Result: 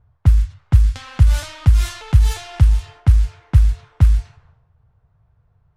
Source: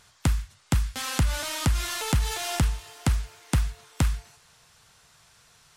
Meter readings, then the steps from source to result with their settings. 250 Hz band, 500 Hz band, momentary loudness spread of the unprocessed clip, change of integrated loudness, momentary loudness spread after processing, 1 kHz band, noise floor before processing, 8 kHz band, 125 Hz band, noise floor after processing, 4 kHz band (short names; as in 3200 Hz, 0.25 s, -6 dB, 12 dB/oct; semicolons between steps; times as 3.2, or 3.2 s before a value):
+1.0 dB, -2.0 dB, 3 LU, +10.5 dB, 3 LU, -1.5 dB, -59 dBFS, -4.0 dB, +12.0 dB, -62 dBFS, -2.0 dB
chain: transient shaper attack +2 dB, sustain +8 dB; low-pass opened by the level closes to 690 Hz, open at -19.5 dBFS; resonant low shelf 150 Hz +13 dB, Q 1.5; gain -3.5 dB